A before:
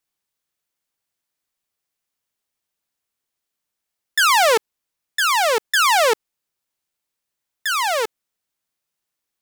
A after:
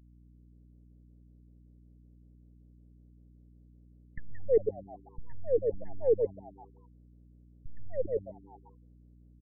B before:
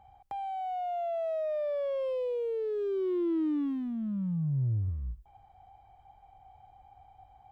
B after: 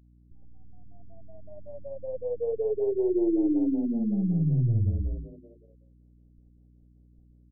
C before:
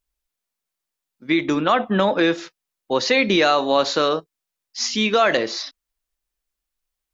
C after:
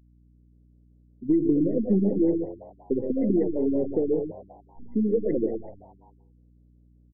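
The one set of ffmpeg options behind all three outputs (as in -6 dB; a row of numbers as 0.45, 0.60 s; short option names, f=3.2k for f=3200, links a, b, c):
-filter_complex "[0:a]aeval=exprs='if(lt(val(0),0),0.708*val(0),val(0))':c=same,afftfilt=real='re*gte(hypot(re,im),0.0112)':imag='im*gte(hypot(re,im),0.0112)':win_size=1024:overlap=0.75,acontrast=84,asuperstop=centerf=1100:order=12:qfactor=0.54,asplit=2[a][b];[b]aecho=0:1:113:0.376[c];[a][c]amix=inputs=2:normalize=0,acompressor=threshold=-20dB:ratio=3,aeval=exprs='val(0)+0.00158*(sin(2*PI*60*n/s)+sin(2*PI*2*60*n/s)/2+sin(2*PI*3*60*n/s)/3+sin(2*PI*4*60*n/s)/4+sin(2*PI*5*60*n/s)/5)':c=same,asplit=2[d][e];[e]asplit=5[f][g][h][i][j];[f]adelay=127,afreqshift=97,volume=-17.5dB[k];[g]adelay=254,afreqshift=194,volume=-22.4dB[l];[h]adelay=381,afreqshift=291,volume=-27.3dB[m];[i]adelay=508,afreqshift=388,volume=-32.1dB[n];[j]adelay=635,afreqshift=485,volume=-37dB[o];[k][l][m][n][o]amix=inputs=5:normalize=0[p];[d][p]amix=inputs=2:normalize=0,afftfilt=real='re*lt(b*sr/1024,340*pow(2100/340,0.5+0.5*sin(2*PI*5.3*pts/sr)))':imag='im*lt(b*sr/1024,340*pow(2100/340,0.5+0.5*sin(2*PI*5.3*pts/sr)))':win_size=1024:overlap=0.75"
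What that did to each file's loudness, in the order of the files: -14.0, +5.0, -6.0 LU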